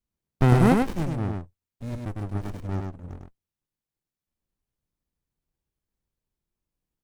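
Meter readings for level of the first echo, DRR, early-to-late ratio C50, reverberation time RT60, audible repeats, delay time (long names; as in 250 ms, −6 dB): −3.5 dB, no reverb audible, no reverb audible, no reverb audible, 1, 102 ms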